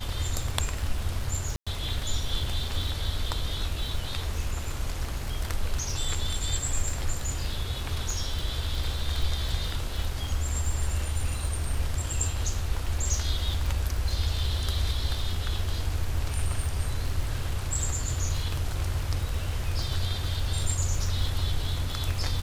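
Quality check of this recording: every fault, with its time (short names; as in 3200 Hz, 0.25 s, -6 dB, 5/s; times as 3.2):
crackle 48/s -31 dBFS
1.56–1.67 gap 0.106 s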